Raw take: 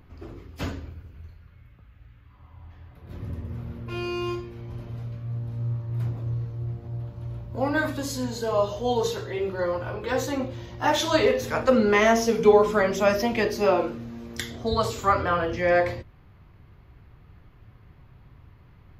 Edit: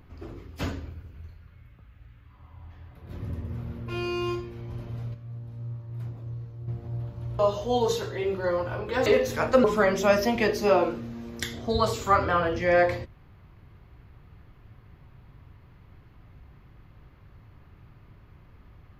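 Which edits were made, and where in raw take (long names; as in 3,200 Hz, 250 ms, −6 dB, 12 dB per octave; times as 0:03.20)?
0:05.14–0:06.68: clip gain −7.5 dB
0:07.39–0:08.54: remove
0:10.21–0:11.20: remove
0:11.78–0:12.61: remove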